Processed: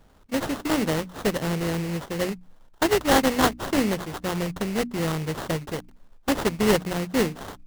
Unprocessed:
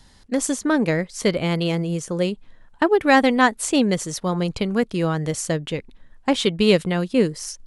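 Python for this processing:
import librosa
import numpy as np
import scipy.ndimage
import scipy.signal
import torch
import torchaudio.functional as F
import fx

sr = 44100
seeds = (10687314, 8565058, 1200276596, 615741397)

y = fx.bit_reversed(x, sr, seeds[0], block=16)
y = fx.sample_hold(y, sr, seeds[1], rate_hz=2400.0, jitter_pct=20)
y = fx.hum_notches(y, sr, base_hz=60, count=5)
y = y * librosa.db_to_amplitude(-4.0)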